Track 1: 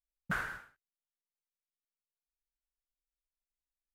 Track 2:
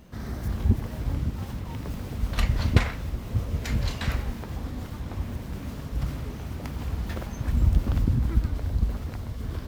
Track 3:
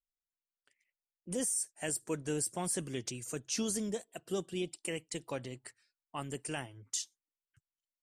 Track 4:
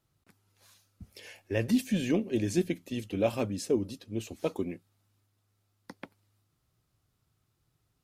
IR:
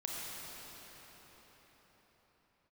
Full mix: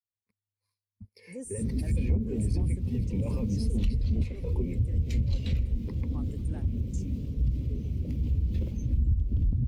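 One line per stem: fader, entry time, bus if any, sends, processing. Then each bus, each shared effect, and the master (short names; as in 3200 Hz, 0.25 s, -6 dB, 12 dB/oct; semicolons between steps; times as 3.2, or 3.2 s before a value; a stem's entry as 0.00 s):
off
-1.0 dB, 1.45 s, bus B, no send, band shelf 1100 Hz -13.5 dB
-7.0 dB, 0.00 s, bus B, no send, bell 3300 Hz -12 dB 1 oct
-5.0 dB, 0.00 s, bus A, no send, ripple EQ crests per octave 0.9, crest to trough 13 dB
bus A: 0.0 dB, negative-ratio compressor -32 dBFS, ratio -0.5; limiter -30 dBFS, peak gain reduction 10 dB
bus B: 0.0 dB, notches 50/100/150 Hz; compressor 10:1, threshold -28 dBFS, peak gain reduction 15 dB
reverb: off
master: sample leveller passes 2; spectral expander 1.5:1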